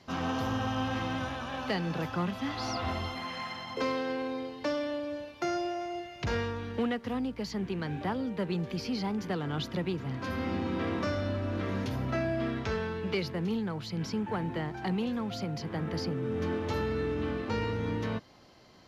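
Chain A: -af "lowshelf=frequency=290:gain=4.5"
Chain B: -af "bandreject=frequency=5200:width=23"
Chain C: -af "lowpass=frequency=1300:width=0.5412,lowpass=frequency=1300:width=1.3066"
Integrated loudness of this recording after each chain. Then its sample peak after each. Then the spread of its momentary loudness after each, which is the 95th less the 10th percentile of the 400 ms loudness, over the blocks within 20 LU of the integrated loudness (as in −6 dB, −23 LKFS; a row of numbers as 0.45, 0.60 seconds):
−31.5, −33.5, −34.0 LKFS; −18.5, −21.0, −21.0 dBFS; 4, 4, 4 LU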